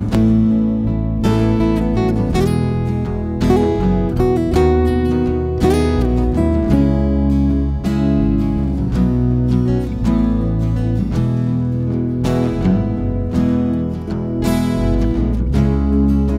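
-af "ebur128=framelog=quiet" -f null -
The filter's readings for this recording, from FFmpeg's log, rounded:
Integrated loudness:
  I:         -16.5 LUFS
  Threshold: -26.5 LUFS
Loudness range:
  LRA:         2.3 LU
  Threshold: -36.6 LUFS
  LRA low:   -17.8 LUFS
  LRA high:  -15.5 LUFS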